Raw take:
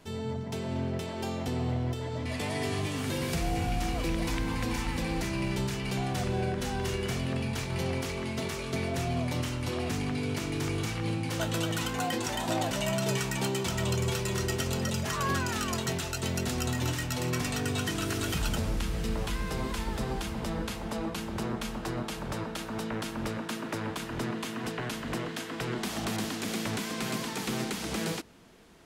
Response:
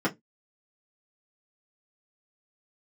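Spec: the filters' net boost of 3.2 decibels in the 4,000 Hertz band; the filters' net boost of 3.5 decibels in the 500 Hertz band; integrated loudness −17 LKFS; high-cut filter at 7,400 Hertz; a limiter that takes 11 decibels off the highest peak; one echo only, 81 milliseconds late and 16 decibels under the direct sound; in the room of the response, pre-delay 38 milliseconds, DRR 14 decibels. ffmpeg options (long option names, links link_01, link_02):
-filter_complex "[0:a]lowpass=7400,equalizer=frequency=500:width_type=o:gain=4.5,equalizer=frequency=4000:width_type=o:gain=4.5,alimiter=level_in=2dB:limit=-24dB:level=0:latency=1,volume=-2dB,aecho=1:1:81:0.158,asplit=2[link_01][link_02];[1:a]atrim=start_sample=2205,adelay=38[link_03];[link_02][link_03]afir=irnorm=-1:irlink=0,volume=-25dB[link_04];[link_01][link_04]amix=inputs=2:normalize=0,volume=17dB"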